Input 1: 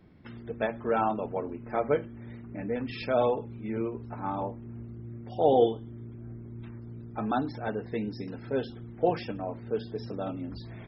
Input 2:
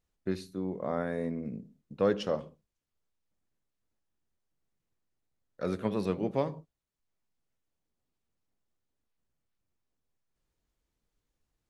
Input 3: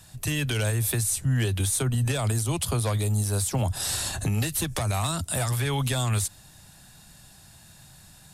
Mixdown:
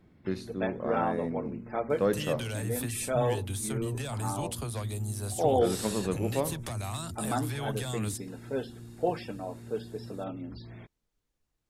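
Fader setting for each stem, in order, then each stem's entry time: −3.0, 0.0, −9.5 decibels; 0.00, 0.00, 1.90 seconds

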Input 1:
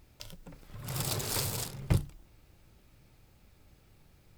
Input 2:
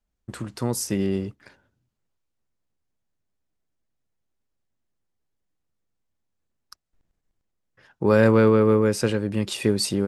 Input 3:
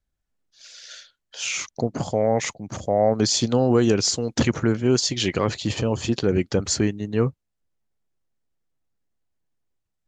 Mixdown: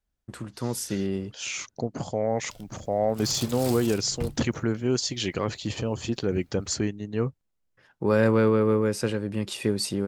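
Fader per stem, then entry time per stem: −4.0, −4.0, −5.5 decibels; 2.30, 0.00, 0.00 seconds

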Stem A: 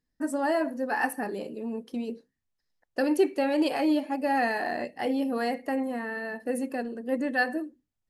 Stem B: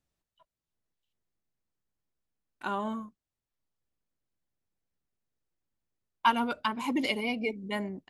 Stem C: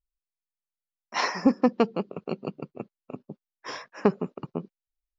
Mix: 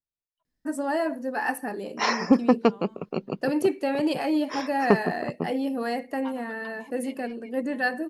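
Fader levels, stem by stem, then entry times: 0.0, −17.5, +2.0 decibels; 0.45, 0.00, 0.85 seconds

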